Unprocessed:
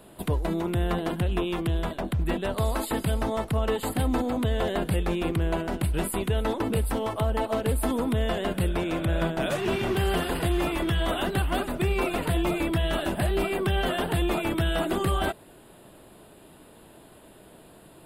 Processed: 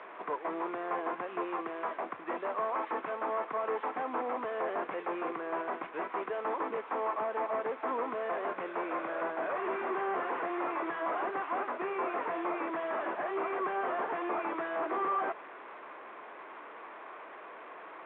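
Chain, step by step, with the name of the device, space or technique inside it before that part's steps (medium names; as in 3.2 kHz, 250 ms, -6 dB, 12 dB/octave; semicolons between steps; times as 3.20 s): digital answering machine (band-pass 320–3300 Hz; one-bit delta coder 16 kbps, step -40 dBFS; cabinet simulation 490–3400 Hz, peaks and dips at 590 Hz -3 dB, 1.1 kHz +8 dB, 2.9 kHz -9 dB)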